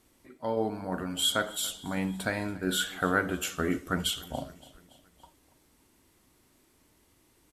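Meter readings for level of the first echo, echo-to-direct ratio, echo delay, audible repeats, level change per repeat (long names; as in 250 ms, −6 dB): −21.5 dB, −20.0 dB, 284 ms, 3, −5.0 dB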